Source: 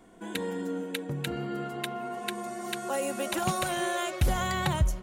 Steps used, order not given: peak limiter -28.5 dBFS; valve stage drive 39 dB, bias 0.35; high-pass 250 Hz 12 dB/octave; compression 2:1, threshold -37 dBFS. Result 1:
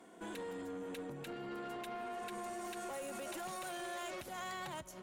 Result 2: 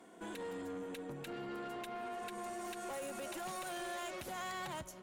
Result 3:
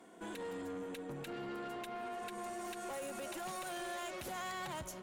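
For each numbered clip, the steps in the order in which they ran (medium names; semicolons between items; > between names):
peak limiter > compression > high-pass > valve stage; compression > high-pass > peak limiter > valve stage; high-pass > compression > peak limiter > valve stage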